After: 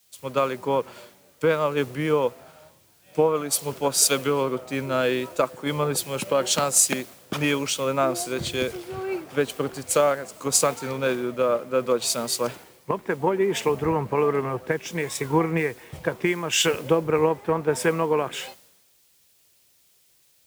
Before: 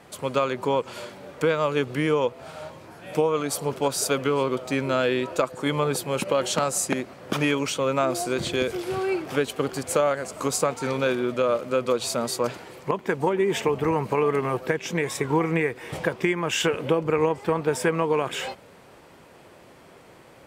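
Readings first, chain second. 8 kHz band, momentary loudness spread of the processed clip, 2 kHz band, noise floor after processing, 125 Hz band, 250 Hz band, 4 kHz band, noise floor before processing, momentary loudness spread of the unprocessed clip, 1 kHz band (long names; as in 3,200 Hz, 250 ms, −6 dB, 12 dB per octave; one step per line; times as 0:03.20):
+6.5 dB, 9 LU, −0.5 dB, −61 dBFS, −0.5 dB, −1.0 dB, +2.5 dB, −50 dBFS, 6 LU, 0.0 dB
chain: background noise white −48 dBFS
multiband upward and downward expander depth 100%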